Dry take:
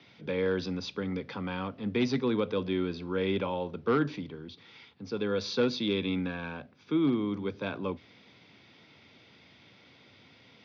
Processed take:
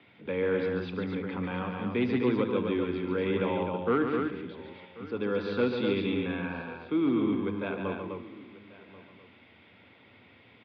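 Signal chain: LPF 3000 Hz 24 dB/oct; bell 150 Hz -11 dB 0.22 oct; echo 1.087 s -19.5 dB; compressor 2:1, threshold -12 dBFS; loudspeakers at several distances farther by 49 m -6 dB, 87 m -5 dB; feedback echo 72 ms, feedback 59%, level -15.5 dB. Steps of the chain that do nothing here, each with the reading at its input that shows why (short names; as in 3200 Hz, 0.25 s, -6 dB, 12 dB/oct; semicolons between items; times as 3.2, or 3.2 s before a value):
compressor, threshold -12 dBFS: input peak -16.0 dBFS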